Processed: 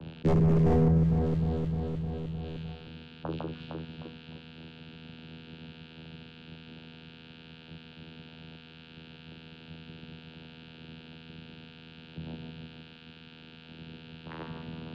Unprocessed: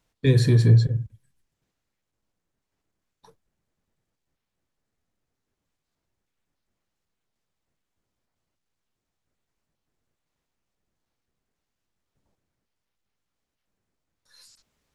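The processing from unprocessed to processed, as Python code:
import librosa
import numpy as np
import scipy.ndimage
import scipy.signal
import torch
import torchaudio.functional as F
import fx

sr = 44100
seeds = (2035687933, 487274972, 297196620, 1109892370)

y = x + 10.0 ** (-42.0 / 20.0) * np.sin(2.0 * np.pi * 4000.0 * np.arange(len(x)) / sr)
y = fx.peak_eq(y, sr, hz=3700.0, db=6.0, octaves=0.77)
y = fx.hum_notches(y, sr, base_hz=60, count=6)
y = fx.doubler(y, sr, ms=41.0, db=-9.5)
y = np.repeat(scipy.signal.resample_poly(y, 1, 6), 6)[:len(y)]
y = fx.vocoder(y, sr, bands=8, carrier='saw', carrier_hz=80.6)
y = 10.0 ** (-20.0 / 20.0) * (np.abs((y / 10.0 ** (-20.0 / 20.0) + 3.0) % 4.0 - 2.0) - 1.0)
y = fx.env_lowpass(y, sr, base_hz=830.0, full_db=-47.0)
y = fx.low_shelf(y, sr, hz=340.0, db=9.5)
y = fx.echo_alternate(y, sr, ms=153, hz=1900.0, feedback_pct=60, wet_db=-6.0)
y = fx.env_flatten(y, sr, amount_pct=70)
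y = F.gain(torch.from_numpy(y), -6.5).numpy()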